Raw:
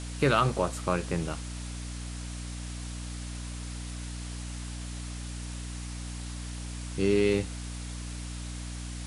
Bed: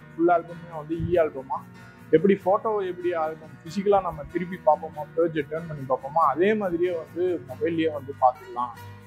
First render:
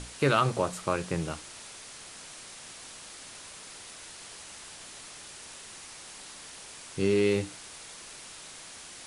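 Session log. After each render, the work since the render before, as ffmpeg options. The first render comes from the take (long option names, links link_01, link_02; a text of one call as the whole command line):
ffmpeg -i in.wav -af "bandreject=frequency=60:width_type=h:width=6,bandreject=frequency=120:width_type=h:width=6,bandreject=frequency=180:width_type=h:width=6,bandreject=frequency=240:width_type=h:width=6,bandreject=frequency=300:width_type=h:width=6" out.wav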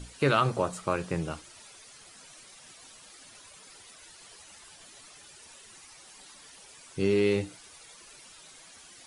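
ffmpeg -i in.wav -af "afftdn=noise_reduction=11:noise_floor=-47" out.wav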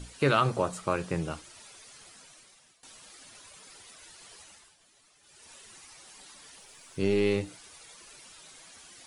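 ffmpeg -i in.wav -filter_complex "[0:a]asettb=1/sr,asplit=3[link_01][link_02][link_03];[link_01]atrim=end=6.604[link_04];[link_02]atrim=start=6.6:end=7.48,asetpts=PTS-STARTPTS,afade=type=in:duration=0.004:curve=qsin,afade=type=out:start_time=0.876:duration=0.004:curve=qsin,aeval=exprs='if(lt(val(0),0),0.708*val(0),val(0))':channel_layout=same[link_05];[link_03]atrim=start=7.476[link_06];[link_04][link_05]acrossfade=duration=0.004:curve1=hsin:curve2=qsin[link_07];[link_07][link_06]acrossfade=duration=0.004:curve1=qsin:curve2=hsin,asplit=4[link_08][link_09][link_10][link_11];[link_08]atrim=end=2.83,asetpts=PTS-STARTPTS,afade=type=out:start_time=2.06:duration=0.77:silence=0.133352[link_12];[link_09]atrim=start=2.83:end=4.75,asetpts=PTS-STARTPTS,afade=type=in:duration=0.004:curve=hsin:silence=0.133352,afade=type=out:start_time=1.59:duration=0.33:silence=0.251189[link_13];[link_10]atrim=start=4.75:end=5.21,asetpts=PTS-STARTPTS,volume=-12dB[link_14];[link_11]atrim=start=5.21,asetpts=PTS-STARTPTS,afade=type=in:duration=0.33:silence=0.251189[link_15];[link_12][link_13][link_14][link_15]concat=n=4:v=0:a=1" out.wav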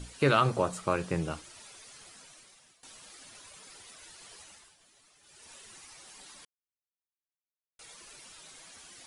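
ffmpeg -i in.wav -filter_complex "[0:a]asplit=3[link_01][link_02][link_03];[link_01]atrim=end=6.45,asetpts=PTS-STARTPTS,afade=type=out:start_time=6.446:duration=0.004:curve=hsin[link_04];[link_02]atrim=start=6.45:end=7.79,asetpts=PTS-STARTPTS,volume=0[link_05];[link_03]atrim=start=7.79,asetpts=PTS-STARTPTS,afade=type=in:duration=0.004:curve=hsin[link_06];[link_04][link_05][link_06]concat=n=3:v=0:a=1" out.wav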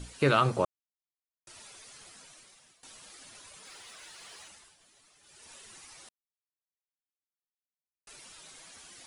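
ffmpeg -i in.wav -filter_complex "[0:a]asettb=1/sr,asplit=3[link_01][link_02][link_03];[link_01]atrim=end=3.654[link_04];[link_02]atrim=start=3.65:end=4.48,asetpts=PTS-STARTPTS,afade=type=in:duration=0.004:curve=qsin,afade=type=out:start_time=0.826:duration=0.004:curve=qsin,asplit=2[link_05][link_06];[link_06]highpass=frequency=720:poles=1,volume=12dB,asoftclip=type=tanh:threshold=-39.5dB[link_07];[link_05][link_07]amix=inputs=2:normalize=0,lowpass=frequency=4800:poles=1,volume=-6dB[link_08];[link_03]atrim=start=4.476[link_09];[link_04][link_08]acrossfade=duration=0.004:curve1=hsin:curve2=qsin[link_10];[link_10][link_09]acrossfade=duration=0.004:curve1=qsin:curve2=hsin,asplit=5[link_11][link_12][link_13][link_14][link_15];[link_11]atrim=end=0.65,asetpts=PTS-STARTPTS,afade=type=out:start_time=0.646:duration=0.004:curve=hsin[link_16];[link_12]atrim=start=0.65:end=1.47,asetpts=PTS-STARTPTS,volume=0[link_17];[link_13]atrim=start=1.47:end=6.09,asetpts=PTS-STARTPTS,afade=type=in:duration=0.004:curve=hsin,afade=type=out:start_time=4.616:duration=0.004:curve=hsin[link_18];[link_14]atrim=start=6.09:end=8.07,asetpts=PTS-STARTPTS,volume=0[link_19];[link_15]atrim=start=8.07,asetpts=PTS-STARTPTS,afade=type=in:duration=0.004:curve=hsin[link_20];[link_16][link_17][link_18][link_19][link_20]concat=n=5:v=0:a=1" out.wav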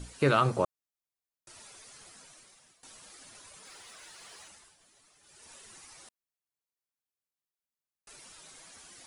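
ffmpeg -i in.wav -af "equalizer=frequency=3100:width=1.1:gain=-3" out.wav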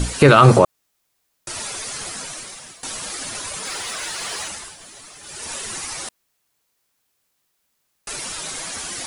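ffmpeg -i in.wav -af "acontrast=71,alimiter=level_in=15.5dB:limit=-1dB:release=50:level=0:latency=1" out.wav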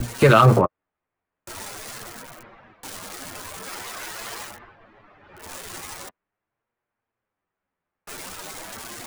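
ffmpeg -i in.wav -filter_complex "[0:a]flanger=delay=8.4:depth=3.1:regen=-12:speed=0.44:shape=sinusoidal,acrossover=split=300|610|2100[link_01][link_02][link_03][link_04];[link_04]aeval=exprs='val(0)*gte(abs(val(0)),0.0335)':channel_layout=same[link_05];[link_01][link_02][link_03][link_05]amix=inputs=4:normalize=0" out.wav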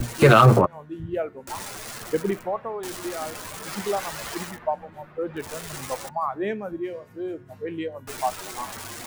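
ffmpeg -i in.wav -i bed.wav -filter_complex "[1:a]volume=-6.5dB[link_01];[0:a][link_01]amix=inputs=2:normalize=0" out.wav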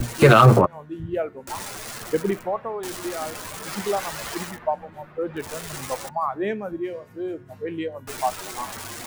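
ffmpeg -i in.wav -af "volume=1.5dB,alimiter=limit=-1dB:level=0:latency=1" out.wav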